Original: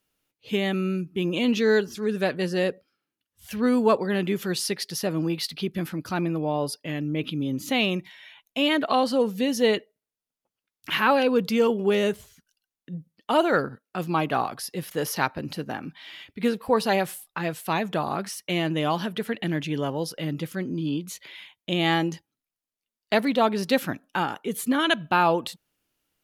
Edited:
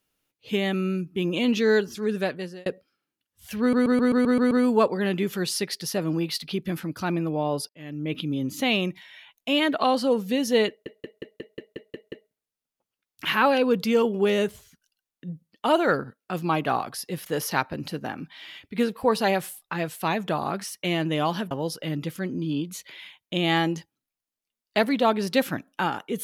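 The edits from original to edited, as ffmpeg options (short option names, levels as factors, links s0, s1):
-filter_complex "[0:a]asplit=19[s0][s1][s2][s3][s4][s5][s6][s7][s8][s9][s10][s11][s12][s13][s14][s15][s16][s17][s18];[s0]atrim=end=2.66,asetpts=PTS-STARTPTS,afade=t=out:st=2.15:d=0.51[s19];[s1]atrim=start=2.66:end=3.732,asetpts=PTS-STARTPTS,afade=t=in:d=0.004:c=hsin[s20];[s2]atrim=start=3.598:end=3.732[s21];[s3]atrim=start=3.598:end=3.732[s22];[s4]atrim=start=3.598:end=3.732[s23];[s5]atrim=start=3.598:end=3.732[s24];[s6]atrim=start=3.598:end=3.732[s25];[s7]atrim=start=3.598:end=3.732[s26];[s8]atrim=start=3.598:end=6.78,asetpts=PTS-STARTPTS,afade=t=out:st=3.178:d=0.004:c=hsin[s27];[s9]atrim=start=6.78:end=9.952,asetpts=PTS-STARTPTS,afade=t=in:d=0.47[s28];[s10]atrim=start=9.768:end=9.952[s29];[s11]atrim=start=9.768:end=9.952[s30];[s12]atrim=start=9.768:end=9.952[s31];[s13]atrim=start=9.768:end=9.952[s32];[s14]atrim=start=9.768:end=9.952[s33];[s15]atrim=start=9.768:end=9.952[s34];[s16]atrim=start=9.768:end=9.952[s35];[s17]atrim=start=9.768:end=19.162[s36];[s18]atrim=start=19.868[s37];[s19][s20]concat=n=2:v=0:a=1[s38];[s38][s21]acrossfade=d=0.004:c1=hsin:c2=hsin[s39];[s39][s22]acrossfade=d=0.004:c1=hsin:c2=hsin[s40];[s40][s23]acrossfade=d=0.004:c1=hsin:c2=hsin[s41];[s41][s24]acrossfade=d=0.004:c1=hsin:c2=hsin[s42];[s42][s25]acrossfade=d=0.004:c1=hsin:c2=hsin[s43];[s43][s26]acrossfade=d=0.004:c1=hsin:c2=hsin[s44];[s27][s28]concat=n=2:v=0:a=1[s45];[s44][s45]acrossfade=d=0.004:c1=hsin:c2=hsin[s46];[s46][s29]acrossfade=d=0.004:c1=hsin:c2=hsin[s47];[s47][s30]acrossfade=d=0.004:c1=hsin:c2=hsin[s48];[s48][s31]acrossfade=d=0.004:c1=hsin:c2=hsin[s49];[s49][s32]acrossfade=d=0.004:c1=hsin:c2=hsin[s50];[s50][s33]acrossfade=d=0.004:c1=hsin:c2=hsin[s51];[s51][s34]acrossfade=d=0.004:c1=hsin:c2=hsin[s52];[s52][s35]acrossfade=d=0.004:c1=hsin:c2=hsin[s53];[s53][s36]acrossfade=d=0.004:c1=hsin:c2=hsin[s54];[s54][s37]acrossfade=d=0.004:c1=hsin:c2=hsin"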